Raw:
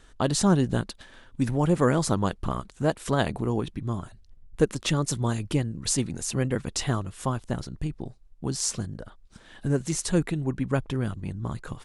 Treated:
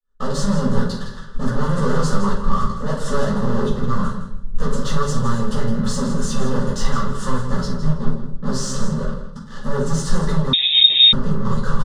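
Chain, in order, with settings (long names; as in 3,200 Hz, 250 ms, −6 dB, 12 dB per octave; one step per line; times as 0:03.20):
fade in at the beginning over 0.54 s
0:07.50–0:07.95: low-shelf EQ 65 Hz −7 dB
leveller curve on the samples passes 5
0:02.23–0:02.87: compressor whose output falls as the input rises −19 dBFS, ratio −1
hard clipping −22 dBFS, distortion −7 dB
high-frequency loss of the air 90 metres
phaser with its sweep stopped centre 470 Hz, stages 8
repeating echo 162 ms, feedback 19%, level −10.5 dB
rectangular room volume 410 cubic metres, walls furnished, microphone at 5.9 metres
0:10.53–0:11.13: voice inversion scrambler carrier 3,700 Hz
level −4.5 dB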